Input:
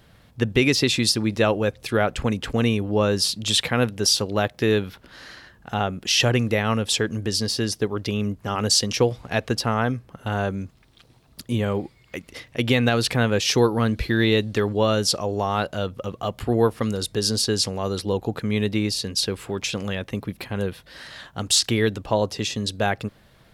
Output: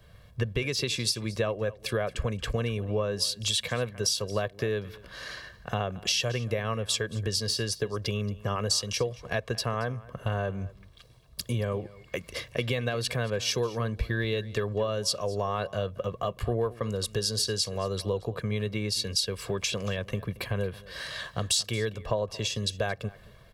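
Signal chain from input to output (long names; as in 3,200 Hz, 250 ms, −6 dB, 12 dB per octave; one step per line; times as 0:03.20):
comb filter 1.8 ms, depth 60%
downward compressor 6 to 1, threshold −32 dBFS, peak gain reduction 18.5 dB
single-tap delay 227 ms −18 dB
multiband upward and downward expander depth 40%
level +4.5 dB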